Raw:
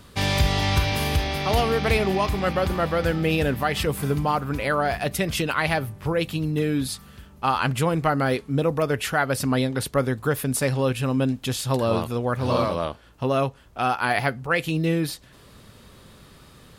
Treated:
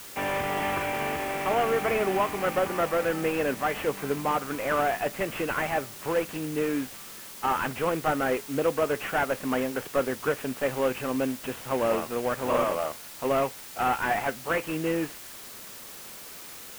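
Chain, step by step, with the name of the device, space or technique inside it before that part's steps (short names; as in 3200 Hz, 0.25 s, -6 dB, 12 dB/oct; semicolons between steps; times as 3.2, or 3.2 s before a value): army field radio (BPF 310–3200 Hz; CVSD 16 kbps; white noise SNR 15 dB)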